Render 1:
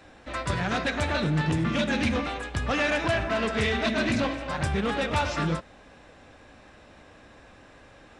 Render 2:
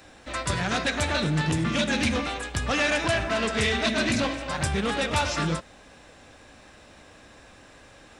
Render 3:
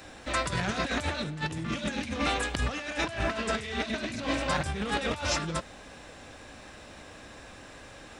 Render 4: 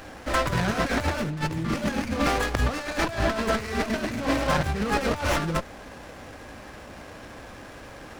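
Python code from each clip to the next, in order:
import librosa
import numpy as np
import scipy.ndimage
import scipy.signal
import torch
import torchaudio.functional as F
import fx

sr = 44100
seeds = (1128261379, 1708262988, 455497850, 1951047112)

y1 = fx.high_shelf(x, sr, hz=4700.0, db=12.0)
y2 = fx.over_compress(y1, sr, threshold_db=-29.0, ratio=-0.5)
y2 = y2 * librosa.db_to_amplitude(-1.0)
y3 = fx.running_max(y2, sr, window=9)
y3 = y3 * librosa.db_to_amplitude(6.0)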